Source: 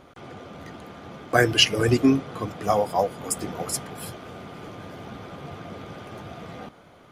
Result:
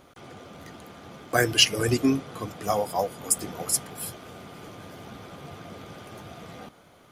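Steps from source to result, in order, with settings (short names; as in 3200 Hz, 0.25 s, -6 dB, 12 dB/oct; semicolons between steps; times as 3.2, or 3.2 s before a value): high shelf 5400 Hz +11.5 dB; gain -4 dB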